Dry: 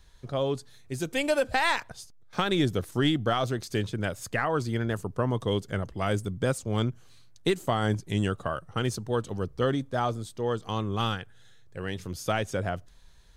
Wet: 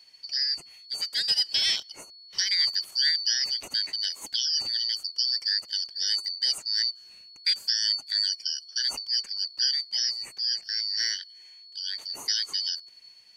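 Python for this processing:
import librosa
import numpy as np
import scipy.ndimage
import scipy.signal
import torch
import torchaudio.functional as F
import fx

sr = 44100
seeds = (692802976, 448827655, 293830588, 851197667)

y = fx.band_shuffle(x, sr, order='4321')
y = fx.low_shelf(y, sr, hz=120.0, db=-5.5)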